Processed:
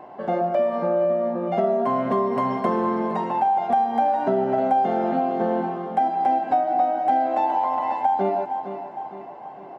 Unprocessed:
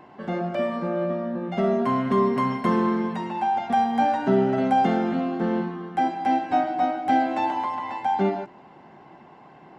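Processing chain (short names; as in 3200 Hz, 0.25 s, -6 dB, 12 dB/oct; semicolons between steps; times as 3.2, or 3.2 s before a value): bell 650 Hz +14.5 dB 1.5 oct; on a send: feedback echo 0.459 s, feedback 50%, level -14.5 dB; on the sum: compressor 4:1, threshold -15 dBFS, peak gain reduction 9.5 dB; gain -3.5 dB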